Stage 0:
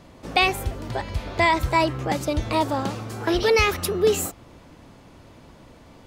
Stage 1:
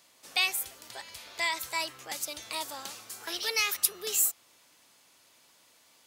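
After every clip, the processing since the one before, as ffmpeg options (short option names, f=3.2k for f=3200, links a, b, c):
-af "aderivative,volume=2.5dB"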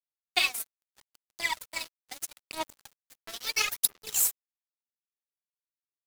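-af "aphaser=in_gain=1:out_gain=1:delay=4.5:decay=0.77:speed=0.76:type=sinusoidal,aeval=exprs='sgn(val(0))*max(abs(val(0))-0.0299,0)':c=same,volume=-1dB"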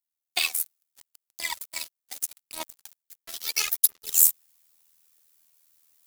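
-af "crystalizer=i=2.5:c=0,areverse,acompressor=mode=upward:threshold=-38dB:ratio=2.5,areverse,tremolo=f=80:d=0.75,volume=-1.5dB"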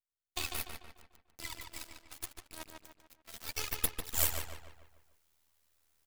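-filter_complex "[0:a]aeval=exprs='max(val(0),0)':c=same,asplit=2[a][b];[b]adelay=147,lowpass=f=3.7k:p=1,volume=-4dB,asplit=2[c][d];[d]adelay=147,lowpass=f=3.7k:p=1,volume=0.47,asplit=2[e][f];[f]adelay=147,lowpass=f=3.7k:p=1,volume=0.47,asplit=2[g][h];[h]adelay=147,lowpass=f=3.7k:p=1,volume=0.47,asplit=2[i][j];[j]adelay=147,lowpass=f=3.7k:p=1,volume=0.47,asplit=2[k][l];[l]adelay=147,lowpass=f=3.7k:p=1,volume=0.47[m];[c][e][g][i][k][m]amix=inputs=6:normalize=0[n];[a][n]amix=inputs=2:normalize=0,volume=-8.5dB"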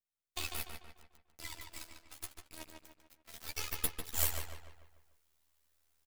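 -filter_complex "[0:a]asplit=2[a][b];[b]adelay=13,volume=-6dB[c];[a][c]amix=inputs=2:normalize=0,volume=-3.5dB"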